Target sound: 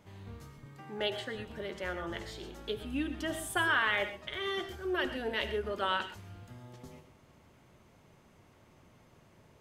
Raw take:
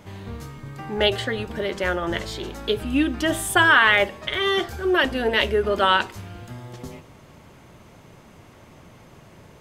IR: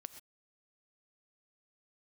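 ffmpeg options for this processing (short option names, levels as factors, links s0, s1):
-filter_complex "[0:a]asettb=1/sr,asplit=3[s0][s1][s2];[s0]atrim=end=0.664[s3];[s1]atrim=start=0.66:end=1.35,asetpts=PTS-STARTPTS,afade=t=in:d=0.004:c=qsin,afade=t=out:st=0.686:d=0.004:c=qsin,highpass=130[s4];[s2]atrim=start=1.346[s5];[s3][s4]acrossfade=d=0.004:c1=hsin:c2=qsin[s6];[s6][s5]acrossfade=d=0.004:c1=qsin:c2=hsin[s7];[1:a]atrim=start_sample=2205[s8];[s7][s8]afir=irnorm=-1:irlink=0,volume=0.398"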